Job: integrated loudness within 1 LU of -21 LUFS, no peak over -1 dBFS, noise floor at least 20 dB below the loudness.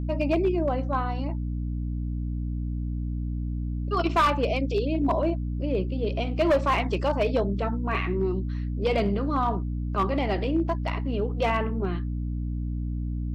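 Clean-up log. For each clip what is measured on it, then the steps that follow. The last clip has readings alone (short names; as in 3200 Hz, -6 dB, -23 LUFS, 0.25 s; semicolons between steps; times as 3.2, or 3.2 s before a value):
clipped 0.7%; flat tops at -16.5 dBFS; hum 60 Hz; harmonics up to 300 Hz; hum level -27 dBFS; loudness -27.0 LUFS; peak -16.5 dBFS; loudness target -21.0 LUFS
-> clip repair -16.5 dBFS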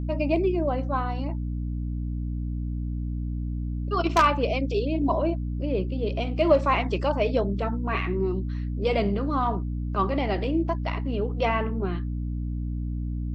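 clipped 0.0%; hum 60 Hz; harmonics up to 300 Hz; hum level -27 dBFS
-> de-hum 60 Hz, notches 5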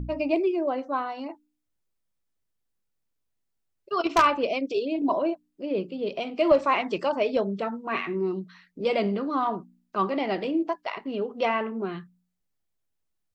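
hum none; loudness -27.0 LUFS; peak -7.5 dBFS; loudness target -21.0 LUFS
-> gain +6 dB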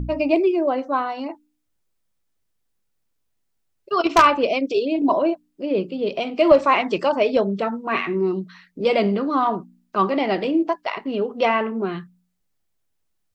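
loudness -21.0 LUFS; peak -1.5 dBFS; noise floor -72 dBFS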